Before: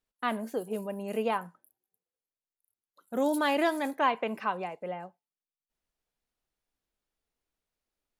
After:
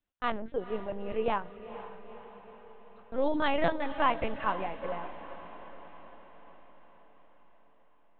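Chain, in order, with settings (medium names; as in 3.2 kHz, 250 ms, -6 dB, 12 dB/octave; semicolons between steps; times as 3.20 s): LPC vocoder at 8 kHz pitch kept; echo that smears into a reverb 480 ms, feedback 59%, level -13 dB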